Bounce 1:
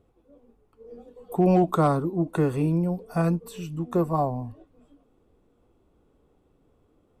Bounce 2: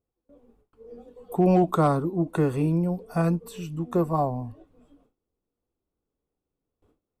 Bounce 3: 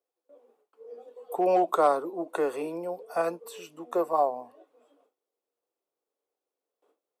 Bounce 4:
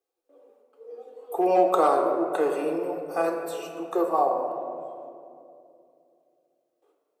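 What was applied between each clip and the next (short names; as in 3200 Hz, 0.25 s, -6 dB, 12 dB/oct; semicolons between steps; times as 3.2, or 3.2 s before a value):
gate with hold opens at -52 dBFS
ladder high-pass 400 Hz, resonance 30%; gain +6 dB
reverb RT60 2.6 s, pre-delay 3 ms, DRR 3 dB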